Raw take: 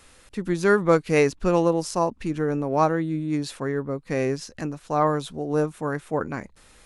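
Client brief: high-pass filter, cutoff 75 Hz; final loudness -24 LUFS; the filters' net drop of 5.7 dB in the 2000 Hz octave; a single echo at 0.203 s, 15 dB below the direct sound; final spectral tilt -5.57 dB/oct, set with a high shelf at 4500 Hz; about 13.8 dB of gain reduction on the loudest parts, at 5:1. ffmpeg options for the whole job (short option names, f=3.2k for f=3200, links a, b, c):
-af "highpass=75,equalizer=f=2k:t=o:g=-9,highshelf=f=4.5k:g=6,acompressor=threshold=-30dB:ratio=5,aecho=1:1:203:0.178,volume=10.5dB"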